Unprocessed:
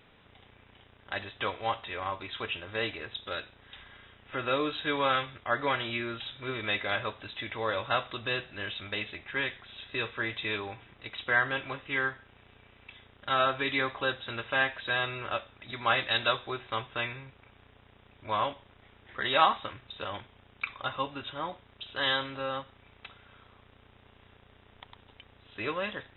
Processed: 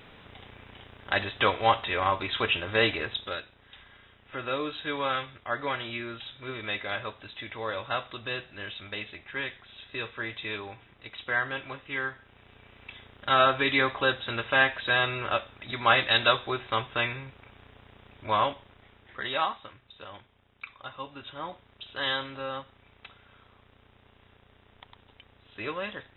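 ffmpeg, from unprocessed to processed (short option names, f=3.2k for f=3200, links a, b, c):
-af "volume=22dB,afade=t=out:st=3.01:d=0.41:silence=0.298538,afade=t=in:st=12.07:d=0.83:silence=0.446684,afade=t=out:st=18.27:d=1.29:silence=0.237137,afade=t=in:st=20.95:d=0.57:silence=0.473151"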